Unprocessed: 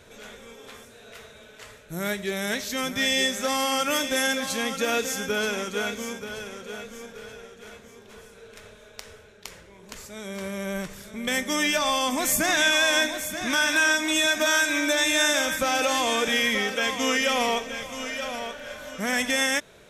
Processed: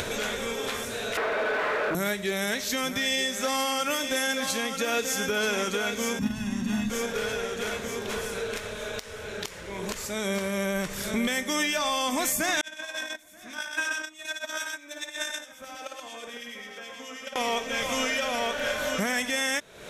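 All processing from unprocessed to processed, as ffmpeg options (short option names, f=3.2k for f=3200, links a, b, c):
-filter_complex "[0:a]asettb=1/sr,asplit=3[a][b][c];[a]atrim=end=1.174[d];[b]atrim=start=1.17:end=1.95,asetpts=PTS-STARTPTS,afade=t=in:d=0.004:c=qsin,afade=t=out:st=0.776:d=0.004:c=qsin,asplit=2[e][f];[f]highpass=f=720:p=1,volume=38dB,asoftclip=type=tanh:threshold=-22.5dB[g];[e][g]amix=inputs=2:normalize=0,lowpass=f=1.3k:p=1,volume=-6dB,acrossover=split=240 2300:gain=0.0708 1 0.0891[h][i][j];[h][i][j]amix=inputs=3:normalize=0,asoftclip=type=hard:threshold=-32.5dB[k];[c]atrim=start=1.946[l];[d][k]acrossfade=d=0.004:c1=hsin:c2=qsin[m];[m][l]acrossfade=d=0.004:c1=qsin:c2=hsin,asettb=1/sr,asplit=3[n][o][p];[n]atrim=end=6.194[q];[o]atrim=start=6.19:end=6.9,asetpts=PTS-STARTPTS,afade=t=in:d=0.004:c=qsin,afade=t=out:st=0.706:d=0.004:c=qsin,lowshelf=f=350:t=q:w=3:g=10,aecho=1:1:1.1:0.76,atrim=end_sample=31311,agate=range=-7dB:threshold=-25dB:ratio=16:release=100:detection=peak[r];[p]atrim=start=6.896[s];[q][r]acrossfade=d=0.004:c1=hsin:c2=qsin[t];[t][s]acrossfade=d=0.004:c1=qsin:c2=hsin,asettb=1/sr,asplit=3[u][v][w];[u]atrim=end=12.614[x];[v]atrim=start=12.61:end=17.36,asetpts=PTS-STARTPTS,afade=t=in:d=0.004:c=qsin,afade=t=out:st=4.746:d=0.004:c=qsin,agate=range=-45dB:threshold=-18dB:ratio=16:release=100:detection=peak,aecho=1:1:55|126:0.562|0.596,atrim=end_sample=209475,acrossover=split=2000[y][z];[y]aeval=exprs='val(0)*(1-0.5/2+0.5/2*cos(2*PI*9.3*n/s))':c=same[aa];[z]aeval=exprs='val(0)*(1-0.5/2-0.5/2*cos(2*PI*9.3*n/s))':c=same[ab];[aa][ab]amix=inputs=2:normalize=0[ac];[w]atrim=start=17.356[ad];[x][ac]acrossfade=d=0.004:c1=hsin:c2=qsin[ae];[ae][ad]acrossfade=d=0.004:c1=qsin:c2=hsin,lowshelf=f=230:g=-3.5,acompressor=mode=upward:threshold=-27dB:ratio=2.5,alimiter=limit=-22.5dB:level=0:latency=1:release=409,volume=6dB"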